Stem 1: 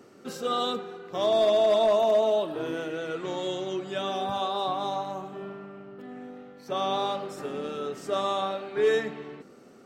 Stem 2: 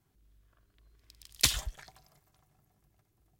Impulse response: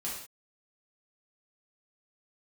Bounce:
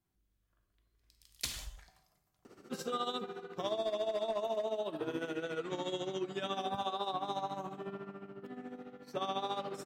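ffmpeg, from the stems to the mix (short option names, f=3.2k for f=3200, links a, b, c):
-filter_complex "[0:a]tremolo=f=14:d=0.71,equalizer=f=590:w=4:g=-3,adelay=2450,volume=-1dB[a];[1:a]volume=-13.5dB,asplit=2[b][c];[c]volume=-3.5dB[d];[2:a]atrim=start_sample=2205[e];[d][e]afir=irnorm=-1:irlink=0[f];[a][b][f]amix=inputs=3:normalize=0,acompressor=threshold=-32dB:ratio=6"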